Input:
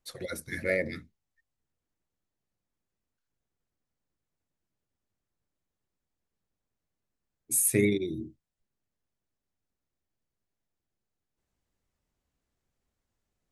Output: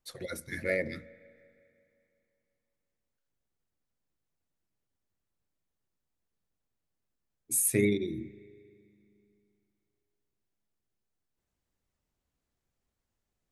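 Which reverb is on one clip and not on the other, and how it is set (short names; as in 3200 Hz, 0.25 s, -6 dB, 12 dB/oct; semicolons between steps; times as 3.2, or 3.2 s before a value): spring tank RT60 2.7 s, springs 34/39 ms, chirp 80 ms, DRR 19.5 dB; gain -2 dB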